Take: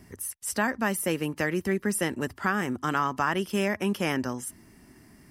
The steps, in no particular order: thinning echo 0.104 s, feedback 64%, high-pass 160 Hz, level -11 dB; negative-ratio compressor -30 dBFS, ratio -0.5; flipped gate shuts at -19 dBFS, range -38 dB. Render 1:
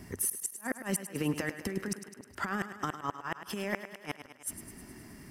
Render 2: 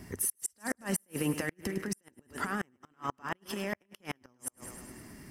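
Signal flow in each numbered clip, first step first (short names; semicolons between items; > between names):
negative-ratio compressor > flipped gate > thinning echo; negative-ratio compressor > thinning echo > flipped gate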